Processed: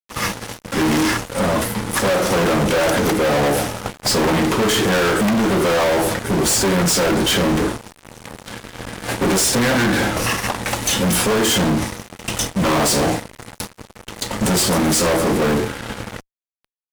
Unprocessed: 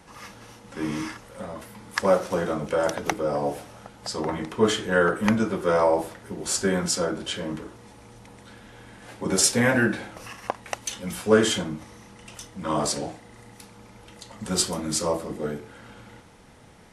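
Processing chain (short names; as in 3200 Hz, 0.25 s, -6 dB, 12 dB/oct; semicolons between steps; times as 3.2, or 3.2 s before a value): high shelf 11000 Hz +4.5 dB; expander -41 dBFS; compressor, threshold -24 dBFS, peak gain reduction 12 dB; in parallel at -11.5 dB: sample-and-hold 32×; on the sum: fuzz box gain 40 dB, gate -49 dBFS; gain -2 dB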